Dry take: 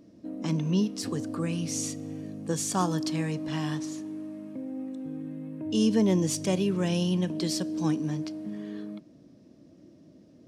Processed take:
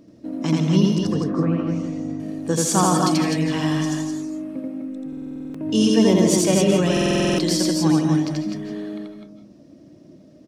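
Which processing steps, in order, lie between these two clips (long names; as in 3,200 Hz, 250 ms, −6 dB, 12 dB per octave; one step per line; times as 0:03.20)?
0:00.98–0:02.20: low-pass filter 1,300 Hz 12 dB per octave
reverb reduction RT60 0.81 s
in parallel at −9 dB: dead-zone distortion −49 dBFS
0:04.59–0:05.54: on the sum: tuned comb filter 330 Hz, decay 0.82 s, mix 50%
loudspeakers that aren't time-aligned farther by 29 metres −1 dB, 87 metres −5 dB
comb and all-pass reverb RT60 0.49 s, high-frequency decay 0.35×, pre-delay 115 ms, DRR 5.5 dB
buffer that repeats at 0:05.08/0:06.92, samples 2,048, times 9
level +4.5 dB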